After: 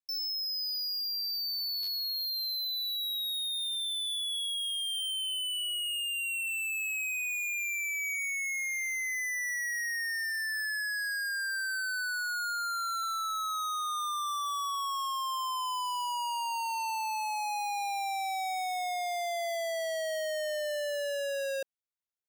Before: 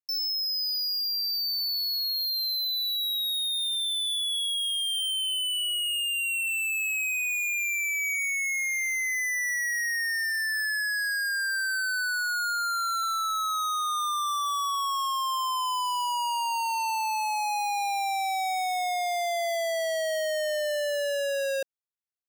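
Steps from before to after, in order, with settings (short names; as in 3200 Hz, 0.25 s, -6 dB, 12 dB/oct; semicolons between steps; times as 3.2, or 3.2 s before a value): stuck buffer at 1.82, samples 512, times 4; gain -5 dB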